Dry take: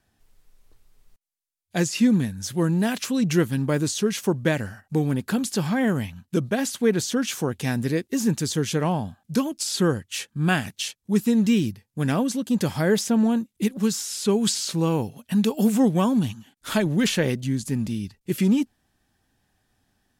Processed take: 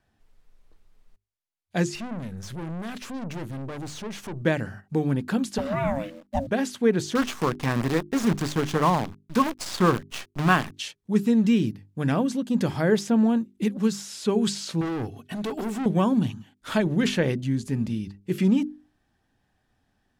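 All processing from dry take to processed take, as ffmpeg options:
-filter_complex "[0:a]asettb=1/sr,asplit=3[s0][s1][s2];[s0]atrim=end=1.954[s3];[s1]atrim=start=1.95:end=4.42,asetpts=PTS-STARTPTS,afade=t=in:d=0.004:c=qsin,afade=t=out:st=2.466:d=0.004:c=qsin,acompressor=mode=upward:threshold=0.0631:ratio=2.5:attack=3.2:release=140:knee=2.83:detection=peak,aeval=exprs='(tanh(35.5*val(0)+0.45)-tanh(0.45))/35.5':c=same[s4];[s2]atrim=start=4.416[s5];[s3][s4]acrossfade=d=0.004:c1=hsin:c2=qsin[s6];[s6][s5]acrossfade=d=0.004:c1=qsin:c2=hsin,asettb=1/sr,asplit=3[s7][s8][s9];[s7]atrim=end=5.584[s10];[s8]atrim=start=5.58:end=6.47,asetpts=PTS-STARTPTS,afade=t=in:d=0.004:c=qsin,afade=t=out:st=0.886:d=0.004:c=qsin,aeval=exprs='val(0)*sin(2*PI*410*n/s)':c=same,acrusher=bits=9:dc=4:mix=0:aa=0.000001[s11];[s9]atrim=start=6.466[s12];[s10][s11]acrossfade=d=0.004:c1=hsin:c2=qsin[s13];[s13][s12]acrossfade=d=0.004:c1=qsin:c2=hsin,asettb=1/sr,asplit=3[s14][s15][s16];[s14]atrim=end=7.154[s17];[s15]atrim=start=7.15:end=10.74,asetpts=PTS-STARTPTS,afade=t=in:d=0.004:c=qsin,afade=t=out:st=3.586:d=0.004:c=qsin,equalizer=f=1100:t=o:w=0.51:g=13,acrusher=bits=5:dc=4:mix=0:aa=0.000001[s18];[s16]atrim=start=10.736[s19];[s17][s18]acrossfade=d=0.004:c1=hsin:c2=qsin[s20];[s20][s19]acrossfade=d=0.004:c1=qsin:c2=hsin,asettb=1/sr,asplit=3[s21][s22][s23];[s21]atrim=end=14.814[s24];[s22]atrim=start=14.81:end=15.86,asetpts=PTS-STARTPTS,afade=t=in:d=0.004:c=qsin,afade=t=out:st=1.046:d=0.004:c=qsin,equalizer=f=80:w=0.41:g=3.5,aecho=1:1:2.7:0.75,atrim=end_sample=46305,asoftclip=type=hard:threshold=0.0473[s25];[s23]atrim=start=15.856[s26];[s24][s25]acrossfade=d=0.004:c1=hsin:c2=qsin[s27];[s27][s26]acrossfade=d=0.004:c1=qsin:c2=hsin,lowpass=f=2800:p=1,bandreject=f=50:t=h:w=6,bandreject=f=100:t=h:w=6,bandreject=f=150:t=h:w=6,bandreject=f=200:t=h:w=6,bandreject=f=250:t=h:w=6,bandreject=f=300:t=h:w=6,bandreject=f=350:t=h:w=6,bandreject=f=400:t=h:w=6"

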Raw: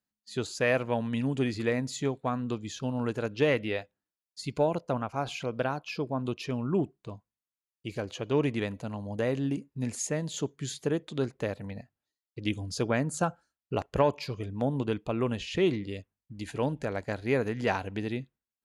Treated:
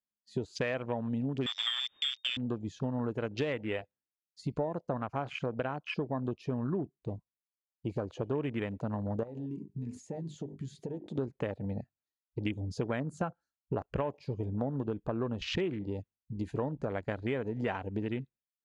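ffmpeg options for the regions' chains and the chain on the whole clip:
-filter_complex "[0:a]asettb=1/sr,asplit=3[s0][s1][s2];[s0]atrim=end=1.464[s3];[s1]atrim=start=1.46:end=2.37,asetpts=PTS-STARTPTS,afade=t=in:d=0.004:c=qsin,afade=t=out:st=0.906:d=0.004:c=qsin,aemphasis=mode=reproduction:type=50kf,acrusher=bits=6:dc=4:mix=0:aa=0.000001,lowpass=f=3100:t=q:w=0.5098,lowpass=f=3100:t=q:w=0.6013,lowpass=f=3100:t=q:w=0.9,lowpass=f=3100:t=q:w=2.563,afreqshift=-3700[s4];[s2]atrim=start=2.366[s5];[s3][s4]acrossfade=d=0.004:c1=hsin:c2=qsin[s6];[s6][s5]acrossfade=d=0.004:c1=qsin:c2=hsin,asettb=1/sr,asplit=3[s7][s8][s9];[s7]atrim=end=9.234[s10];[s8]atrim=start=9.23:end=11.18,asetpts=PTS-STARTPTS,afade=t=in:d=0.004:c=qsin,afade=t=out:st=1.946:d=0.004:c=qsin,bandreject=f=50:t=h:w=6,bandreject=f=100:t=h:w=6,bandreject=f=150:t=h:w=6,bandreject=f=200:t=h:w=6,bandreject=f=250:t=h:w=6,bandreject=f=300:t=h:w=6,bandreject=f=350:t=h:w=6,bandreject=f=400:t=h:w=6,acompressor=threshold=0.0112:ratio=16:attack=3.2:release=140:knee=1:detection=peak[s11];[s9]atrim=start=11.176[s12];[s10][s11]acrossfade=d=0.004:c1=hsin:c2=qsin[s13];[s13][s12]acrossfade=d=0.004:c1=qsin:c2=hsin,lowpass=8200,afwtdn=0.01,acompressor=threshold=0.0158:ratio=6,volume=1.88"

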